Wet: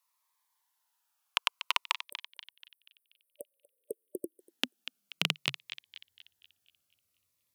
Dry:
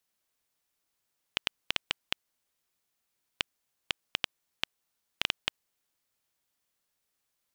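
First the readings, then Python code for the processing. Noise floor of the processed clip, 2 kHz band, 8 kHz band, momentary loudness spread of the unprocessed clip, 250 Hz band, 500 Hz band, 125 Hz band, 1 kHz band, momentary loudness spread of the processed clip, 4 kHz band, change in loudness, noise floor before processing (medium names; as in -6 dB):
-81 dBFS, +0.5 dB, +2.0 dB, 5 LU, +7.0 dB, +5.0 dB, +7.0 dB, +6.0 dB, 22 LU, 0.0 dB, +1.0 dB, -81 dBFS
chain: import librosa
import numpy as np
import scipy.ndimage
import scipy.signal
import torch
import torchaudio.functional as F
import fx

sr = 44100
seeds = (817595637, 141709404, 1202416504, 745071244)

p1 = fx.spec_erase(x, sr, start_s=2.04, length_s=2.35, low_hz=600.0, high_hz=8300.0)
p2 = fx.peak_eq(p1, sr, hz=12000.0, db=5.5, octaves=0.41)
p3 = fx.backlash(p2, sr, play_db=-42.5)
p4 = p2 + F.gain(torch.from_numpy(p3), -9.0).numpy()
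p5 = fx.filter_sweep_highpass(p4, sr, from_hz=980.0, to_hz=87.0, start_s=2.81, end_s=6.1, q=6.5)
p6 = fx.echo_banded(p5, sr, ms=241, feedback_pct=47, hz=3000.0, wet_db=-10)
y = fx.notch_cascade(p6, sr, direction='falling', hz=0.55)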